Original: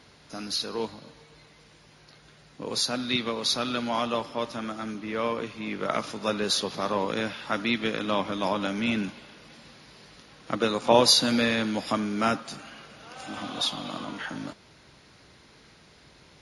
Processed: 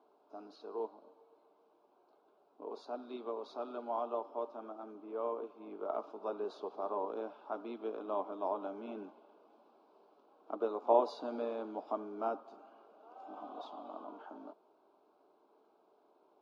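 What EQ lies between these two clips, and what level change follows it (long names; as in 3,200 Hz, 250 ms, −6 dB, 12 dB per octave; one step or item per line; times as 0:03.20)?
four-pole ladder band-pass 540 Hz, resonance 70%
phaser with its sweep stopped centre 510 Hz, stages 6
+5.5 dB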